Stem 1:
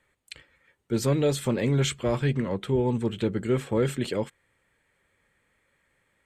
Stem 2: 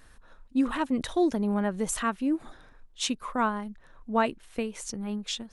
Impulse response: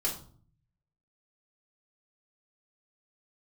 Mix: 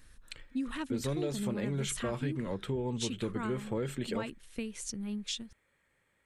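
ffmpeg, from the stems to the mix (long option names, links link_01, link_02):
-filter_complex "[0:a]volume=-4dB[link_01];[1:a]equalizer=frequency=760:width=0.74:gain=-13,volume=-1.5dB[link_02];[link_01][link_02]amix=inputs=2:normalize=0,acompressor=threshold=-31dB:ratio=4"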